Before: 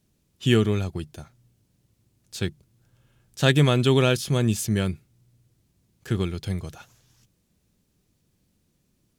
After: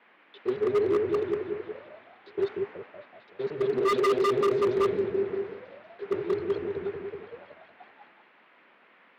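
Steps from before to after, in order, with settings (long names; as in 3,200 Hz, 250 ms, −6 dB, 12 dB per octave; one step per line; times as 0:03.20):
reversed piece by piece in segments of 113 ms
reverb reduction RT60 0.83 s
fuzz pedal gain 44 dB, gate −50 dBFS
reverb reduction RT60 0.79 s
brickwall limiter −16 dBFS, peak gain reduction 6 dB
low-pass with resonance 3,900 Hz, resonance Q 5
on a send: echo whose low-pass opens from repeat to repeat 188 ms, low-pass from 400 Hz, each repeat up 1 octave, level 0 dB
on the sum: envelope filter 400–1,100 Hz, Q 17, down, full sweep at −19 dBFS
noise in a band 200–2,200 Hz −54 dBFS
low-pass that shuts in the quiet parts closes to 2,800 Hz, open at −27 dBFS
wave folding −26.5 dBFS
multiband upward and downward expander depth 70%
level +7.5 dB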